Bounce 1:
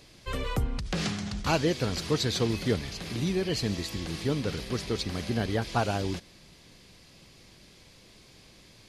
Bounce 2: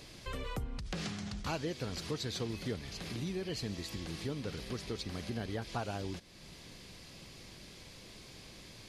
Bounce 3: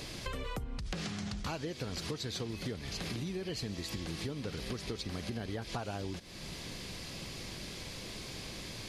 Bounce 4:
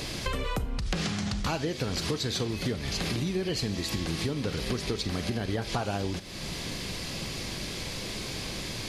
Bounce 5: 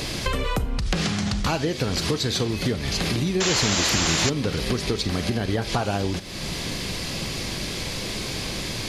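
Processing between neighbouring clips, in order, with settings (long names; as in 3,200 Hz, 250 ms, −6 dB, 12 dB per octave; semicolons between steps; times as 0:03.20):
downward compressor 2 to 1, threshold −48 dBFS, peak gain reduction 14.5 dB; level +2.5 dB
downward compressor, threshold −44 dBFS, peak gain reduction 11.5 dB; level +8.5 dB
four-comb reverb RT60 0.35 s, combs from 29 ms, DRR 13 dB; level +8 dB
sound drawn into the spectrogram noise, 0:03.40–0:04.30, 270–7,600 Hz −30 dBFS; level +6 dB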